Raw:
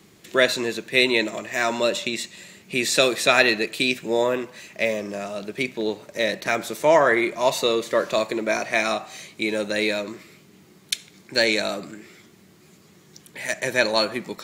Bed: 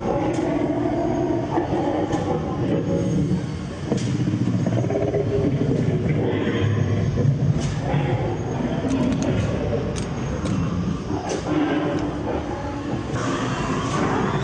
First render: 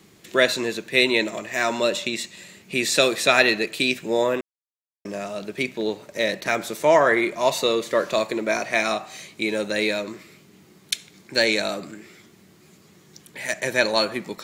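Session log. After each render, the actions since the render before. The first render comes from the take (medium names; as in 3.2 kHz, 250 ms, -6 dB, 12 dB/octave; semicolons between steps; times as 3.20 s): 4.41–5.05 s: mute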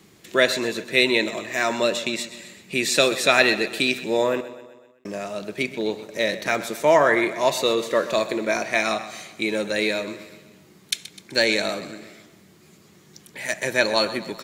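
feedback delay 127 ms, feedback 54%, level -15 dB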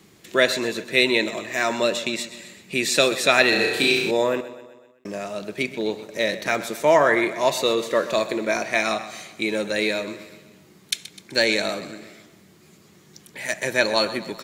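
3.49–4.11 s: flutter echo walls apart 5.8 m, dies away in 0.81 s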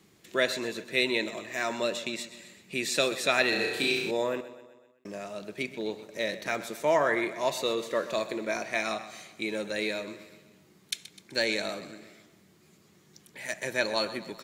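trim -8 dB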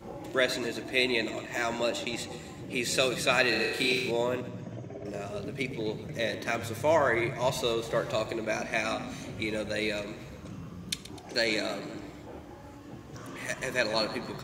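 add bed -19.5 dB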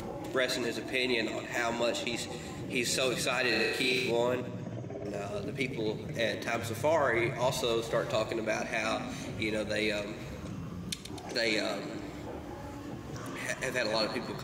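peak limiter -18 dBFS, peak gain reduction 8 dB; upward compressor, threshold -34 dBFS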